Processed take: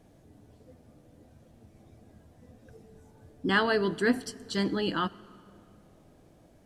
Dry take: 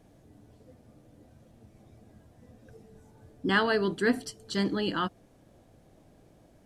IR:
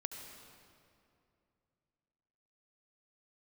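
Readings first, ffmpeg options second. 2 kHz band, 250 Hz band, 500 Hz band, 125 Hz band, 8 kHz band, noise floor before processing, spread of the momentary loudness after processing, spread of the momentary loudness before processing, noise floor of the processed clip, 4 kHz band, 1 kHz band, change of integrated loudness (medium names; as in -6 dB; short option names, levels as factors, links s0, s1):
0.0 dB, 0.0 dB, 0.0 dB, 0.0 dB, 0.0 dB, -60 dBFS, 10 LU, 10 LU, -59 dBFS, 0.0 dB, 0.0 dB, 0.0 dB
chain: -filter_complex "[0:a]asplit=2[s0][s1];[1:a]atrim=start_sample=2205,adelay=12[s2];[s1][s2]afir=irnorm=-1:irlink=0,volume=0.178[s3];[s0][s3]amix=inputs=2:normalize=0"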